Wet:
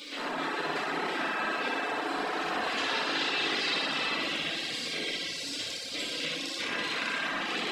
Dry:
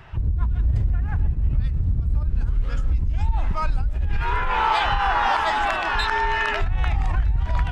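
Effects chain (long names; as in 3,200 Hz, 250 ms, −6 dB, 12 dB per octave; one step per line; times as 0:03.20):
compressor on every frequency bin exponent 0.4
tape wow and flutter 17 cents
gate on every frequency bin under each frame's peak −25 dB weak
0:02.78–0:04.10: parametric band 4,300 Hz +10.5 dB 1.4 octaves
downward compressor 2 to 1, threshold −32 dBFS, peak gain reduction 5.5 dB
0:06.66–0:07.41: parametric band 390 Hz −6 dB → −14 dB 0.56 octaves
flutter between parallel walls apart 10.4 metres, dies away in 1.2 s
feedback delay network reverb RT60 1.8 s, low-frequency decay 1×, high-frequency decay 0.5×, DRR −2.5 dB
reverb reduction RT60 0.69 s
level −3 dB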